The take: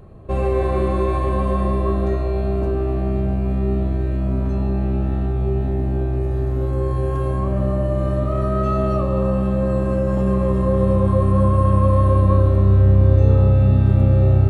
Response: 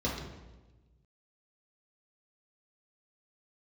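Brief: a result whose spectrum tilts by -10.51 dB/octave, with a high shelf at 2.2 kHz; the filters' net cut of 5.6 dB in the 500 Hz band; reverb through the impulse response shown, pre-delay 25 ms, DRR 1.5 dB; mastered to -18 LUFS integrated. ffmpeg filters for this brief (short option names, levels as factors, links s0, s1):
-filter_complex "[0:a]equalizer=f=500:t=o:g=-7.5,highshelf=f=2200:g=6,asplit=2[s0][s1];[1:a]atrim=start_sample=2205,adelay=25[s2];[s1][s2]afir=irnorm=-1:irlink=0,volume=0.355[s3];[s0][s3]amix=inputs=2:normalize=0,volume=0.316"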